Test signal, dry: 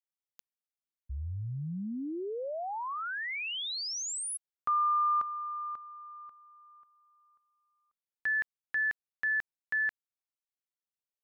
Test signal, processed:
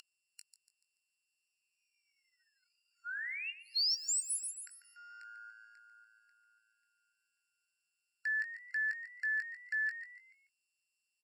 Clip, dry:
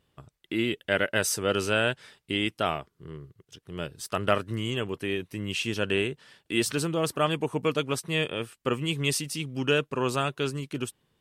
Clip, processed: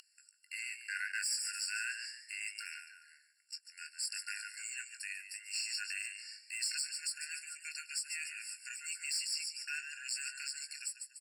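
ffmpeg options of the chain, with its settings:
-filter_complex "[0:a]lowpass=f=10000:w=0.5412,lowpass=f=10000:w=1.3066,equalizer=f=1100:t=o:w=1.5:g=-3.5,asplit=2[s0][s1];[s1]adelay=20,volume=0.316[s2];[s0][s2]amix=inputs=2:normalize=0,asplit=5[s3][s4][s5][s6][s7];[s4]adelay=144,afreqshift=110,volume=0.224[s8];[s5]adelay=288,afreqshift=220,volume=0.0851[s9];[s6]adelay=432,afreqshift=330,volume=0.0324[s10];[s7]adelay=576,afreqshift=440,volume=0.0123[s11];[s3][s8][s9][s10][s11]amix=inputs=5:normalize=0,aeval=exprs='val(0)+0.0178*sin(2*PI*2900*n/s)':c=same,acrossover=split=430[s12][s13];[s13]aexciter=amount=12.6:drive=3.6:freq=3700[s14];[s12][s14]amix=inputs=2:normalize=0,highpass=290,acompressor=threshold=0.0631:ratio=3:attack=0.93:release=24:knee=6:detection=rms,asoftclip=type=tanh:threshold=0.15,highshelf=f=4000:g=-10,afftfilt=real='re*eq(mod(floor(b*sr/1024/1400),2),1)':imag='im*eq(mod(floor(b*sr/1024/1400),2),1)':win_size=1024:overlap=0.75"

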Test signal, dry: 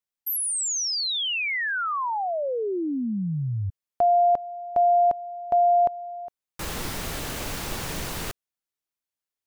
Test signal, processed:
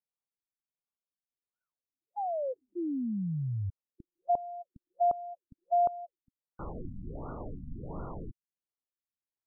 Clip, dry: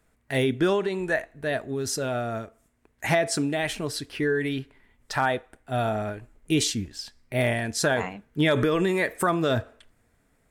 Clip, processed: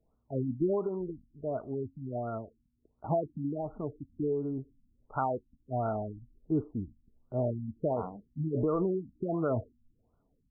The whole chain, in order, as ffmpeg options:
-af "afftfilt=real='re*lt(b*sr/1024,270*pow(1500/270,0.5+0.5*sin(2*PI*1.4*pts/sr)))':imag='im*lt(b*sr/1024,270*pow(1500/270,0.5+0.5*sin(2*PI*1.4*pts/sr)))':win_size=1024:overlap=0.75,volume=0.531"

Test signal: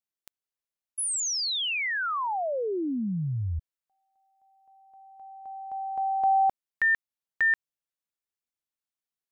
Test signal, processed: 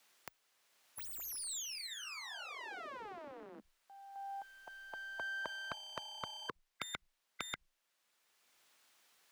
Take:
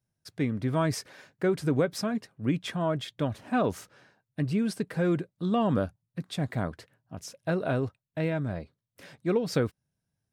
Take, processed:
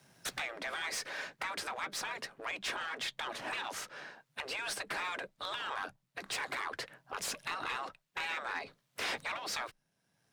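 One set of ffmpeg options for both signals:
-filter_complex "[0:a]aeval=exprs='if(lt(val(0),0),0.708*val(0),val(0))':c=same,afreqshift=16,acompressor=threshold=0.0112:ratio=8:attack=0.27:release=977:knee=1:detection=rms,afftfilt=real='re*lt(hypot(re,im),0.00501)':imag='im*lt(hypot(re,im),0.00501)':win_size=1024:overlap=0.75,asplit=2[s0][s1];[s1]highpass=f=720:p=1,volume=20,asoftclip=type=tanh:threshold=0.0224[s2];[s0][s2]amix=inputs=2:normalize=0,lowpass=f=4000:p=1,volume=0.501,volume=2.99"

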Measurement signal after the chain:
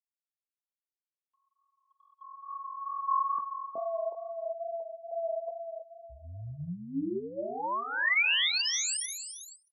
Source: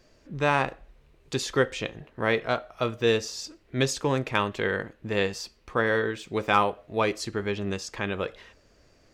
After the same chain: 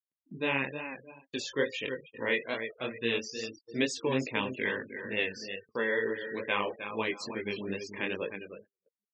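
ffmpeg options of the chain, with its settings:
-filter_complex "[0:a]aphaser=in_gain=1:out_gain=1:delay=2.2:decay=0.28:speed=0.25:type=sinusoidal,asplit=2[s0][s1];[s1]aecho=0:1:310|620|930|1240:0.355|0.135|0.0512|0.0195[s2];[s0][s2]amix=inputs=2:normalize=0,flanger=delay=17.5:depth=5.9:speed=2.3,afftfilt=real='re*gte(hypot(re,im),0.0158)':imag='im*gte(hypot(re,im),0.0158)':win_size=1024:overlap=0.75,agate=range=0.00501:threshold=0.00708:ratio=16:detection=peak,acompressor=mode=upward:threshold=0.00631:ratio=2.5,highpass=200,equalizer=f=250:t=q:w=4:g=5,equalizer=f=720:t=q:w=4:g=-8,equalizer=f=1300:t=q:w=4:g=-10,equalizer=f=2000:t=q:w=4:g=6,equalizer=f=2800:t=q:w=4:g=8,lowpass=f=8900:w=0.5412,lowpass=f=8900:w=1.3066,volume=0.668"

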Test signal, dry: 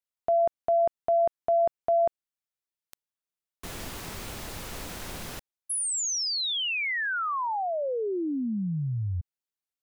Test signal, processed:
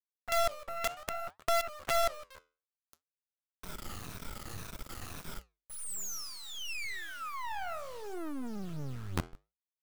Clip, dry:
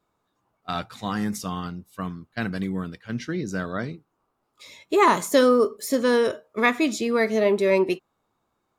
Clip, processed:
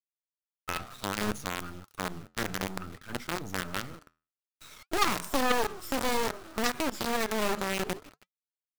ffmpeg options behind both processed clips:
-filter_complex "[0:a]afftfilt=real='re*pow(10,14/40*sin(2*PI*(1.6*log(max(b,1)*sr/1024/100)/log(2)-(-1.9)*(pts-256)/sr)))':imag='im*pow(10,14/40*sin(2*PI*(1.6*log(max(b,1)*sr/1024/100)/log(2)-(-1.9)*(pts-256)/sr)))':win_size=1024:overlap=0.75,acrossover=split=230[s0][s1];[s0]acontrast=74[s2];[s2][s1]amix=inputs=2:normalize=0,adynamicequalizer=threshold=0.0282:dfrequency=170:dqfactor=1.1:tfrequency=170:tqfactor=1.1:attack=5:release=100:ratio=0.438:range=2:mode=cutabove:tftype=bell,asplit=2[s3][s4];[s4]asplit=3[s5][s6][s7];[s5]adelay=155,afreqshift=-73,volume=0.0841[s8];[s6]adelay=310,afreqshift=-146,volume=0.0363[s9];[s7]adelay=465,afreqshift=-219,volume=0.0155[s10];[s8][s9][s10]amix=inputs=3:normalize=0[s11];[s3][s11]amix=inputs=2:normalize=0,acrusher=bits=4:dc=4:mix=0:aa=0.000001,flanger=delay=2.6:depth=9.8:regen=-78:speed=0.6:shape=sinusoidal,equalizer=f=1300:t=o:w=0.27:g=8.5,aeval=exprs='0.531*(cos(1*acos(clip(val(0)/0.531,-1,1)))-cos(1*PI/2))+0.237*(cos(3*acos(clip(val(0)/0.531,-1,1)))-cos(3*PI/2))+0.0944*(cos(4*acos(clip(val(0)/0.531,-1,1)))-cos(4*PI/2))+0.0841*(cos(5*acos(clip(val(0)/0.531,-1,1)))-cos(5*PI/2))+0.00944*(cos(7*acos(clip(val(0)/0.531,-1,1)))-cos(7*PI/2))':c=same,acompressor=threshold=0.00794:ratio=2:attack=1.8:release=44:detection=peak,volume=2.66"

